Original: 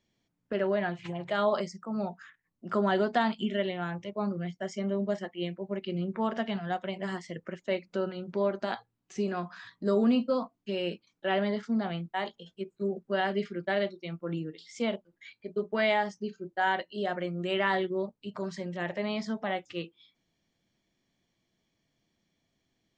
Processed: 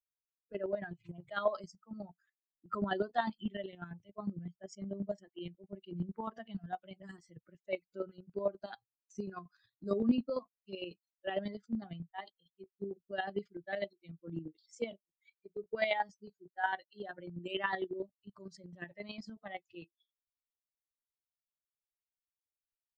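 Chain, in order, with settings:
spectral dynamics exaggerated over time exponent 2
square-wave tremolo 11 Hz, depth 60%, duty 25%
level +1 dB

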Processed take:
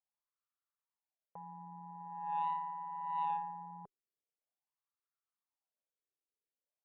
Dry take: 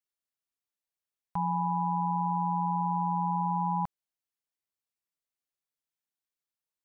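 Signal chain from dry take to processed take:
brickwall limiter −30.5 dBFS, peak gain reduction 9 dB
LFO wah 0.44 Hz 390–1,300 Hz, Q 4.6
harmonic generator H 3 −26 dB, 4 −31 dB, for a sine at −34.5 dBFS
level +7.5 dB

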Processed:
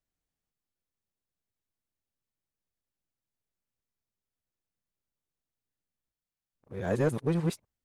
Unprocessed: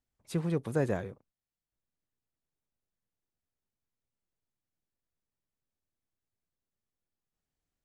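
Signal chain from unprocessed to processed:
played backwards from end to start
leveller curve on the samples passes 1

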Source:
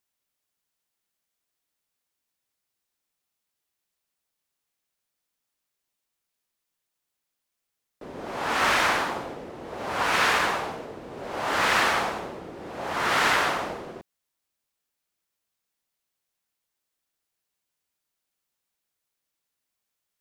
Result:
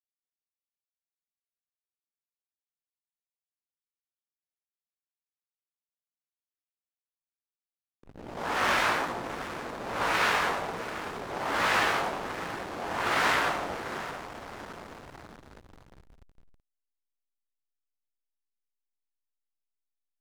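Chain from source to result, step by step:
chorus effect 1.2 Hz, delay 17 ms, depth 4.5 ms
feedback delay with all-pass diffusion 701 ms, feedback 68%, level −10 dB
slack as between gear wheels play −31 dBFS

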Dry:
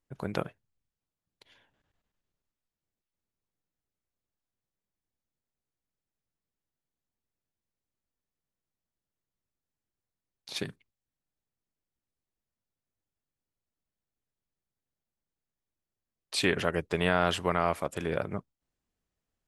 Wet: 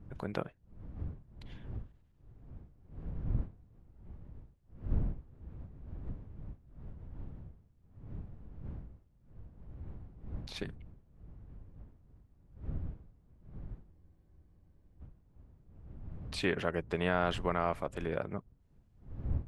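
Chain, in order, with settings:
wind on the microphone 92 Hz −39 dBFS
high-shelf EQ 4,300 Hz −12 dB
frozen spectrum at 0:13.93, 1.08 s
one half of a high-frequency compander encoder only
level −4 dB

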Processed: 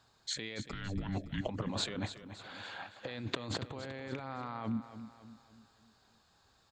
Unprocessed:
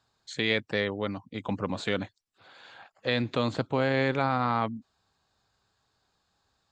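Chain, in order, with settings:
compressor whose output falls as the input rises −37 dBFS, ratio −1
0:00.63–0:01.48: frequency shifter −390 Hz
on a send: repeating echo 282 ms, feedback 46%, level −12 dB
on the sum: level −2.5 dB

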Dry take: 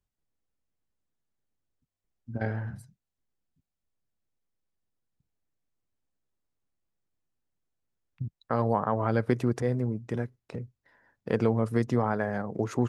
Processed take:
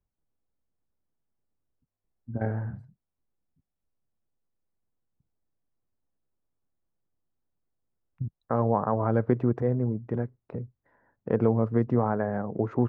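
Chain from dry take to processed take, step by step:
low-pass filter 1,200 Hz 12 dB per octave
level +2 dB

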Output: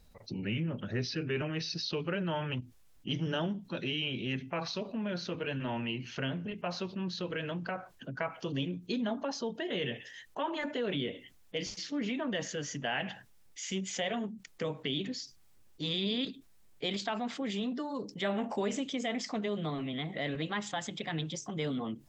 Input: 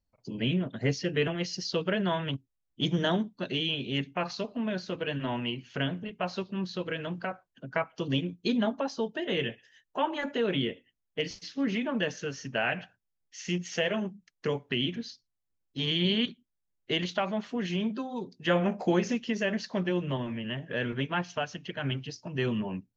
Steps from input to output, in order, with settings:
gliding playback speed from 89% → 119%
envelope flattener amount 50%
level −8 dB

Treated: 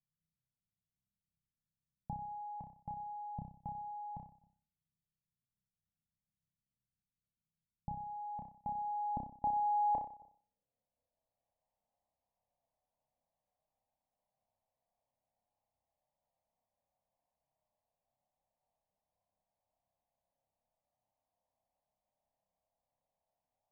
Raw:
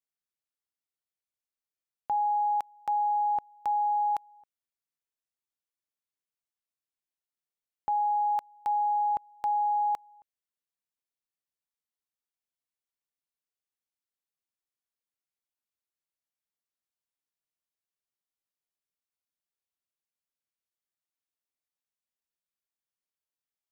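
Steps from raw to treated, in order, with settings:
phaser with its sweep stopped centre 1,400 Hz, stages 6
low-pass filter sweep 170 Hz → 690 Hz, 0:08.07–0:11.62
flutter between parallel walls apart 5.3 metres, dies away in 0.47 s
level +12 dB

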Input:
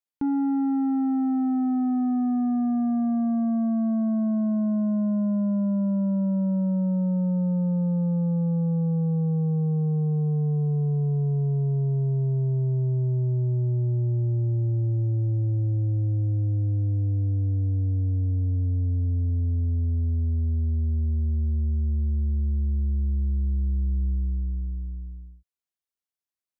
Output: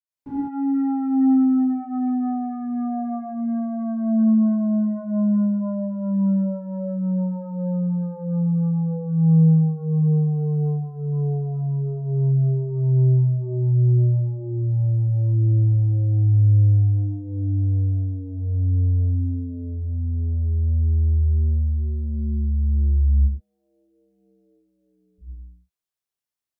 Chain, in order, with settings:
0:23.12–0:25.13: high-pass filter 690 Hz → 320 Hz 24 dB per octave
convolution reverb, pre-delay 47 ms, DRR −60 dB
level −1.5 dB

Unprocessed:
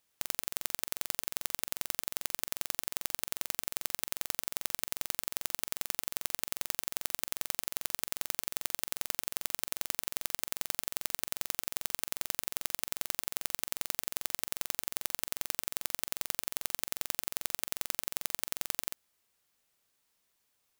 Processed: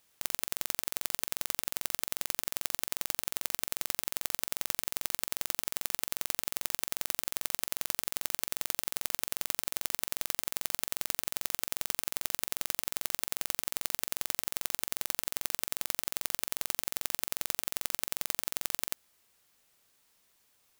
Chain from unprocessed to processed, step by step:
compressor whose output falls as the input rises −37 dBFS, ratio −0.5
level +4.5 dB

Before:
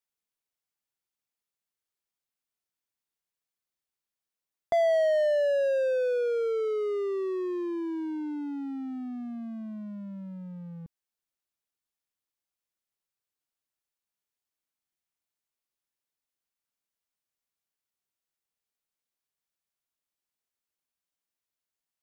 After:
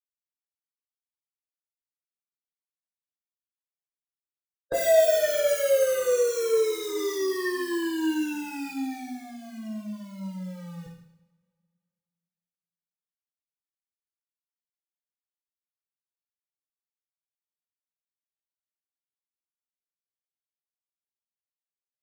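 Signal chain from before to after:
centre clipping without the shift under −45 dBFS
formants moved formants −4 semitones
coupled-rooms reverb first 0.75 s, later 2.3 s, from −26 dB, DRR −5 dB
level −2 dB

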